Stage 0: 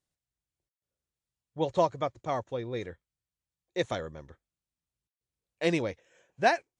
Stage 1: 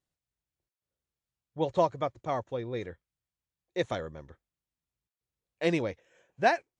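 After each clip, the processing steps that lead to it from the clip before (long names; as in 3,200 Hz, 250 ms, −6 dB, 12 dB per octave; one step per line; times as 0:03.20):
high-shelf EQ 4,800 Hz −6 dB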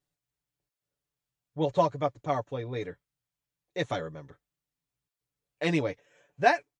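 comb filter 6.9 ms, depth 73%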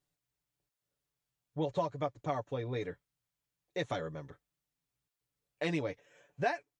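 downward compressor 2.5 to 1, threshold −33 dBFS, peak gain reduction 12 dB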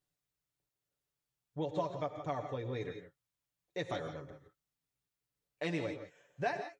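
reverb whose tail is shaped and stops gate 190 ms rising, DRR 7 dB
level −3 dB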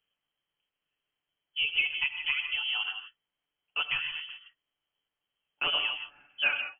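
voice inversion scrambler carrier 3,200 Hz
level +7 dB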